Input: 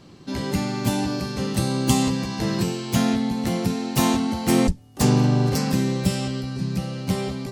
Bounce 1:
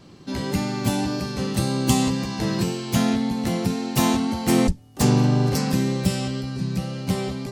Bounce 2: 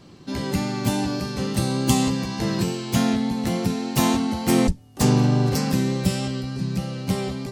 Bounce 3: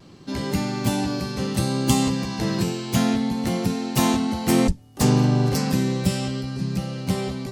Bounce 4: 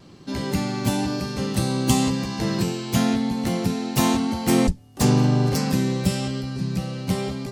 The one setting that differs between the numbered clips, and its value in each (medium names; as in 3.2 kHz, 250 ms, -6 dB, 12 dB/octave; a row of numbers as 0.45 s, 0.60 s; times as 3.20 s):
vibrato, rate: 1.9 Hz, 3.4 Hz, 0.64 Hz, 0.98 Hz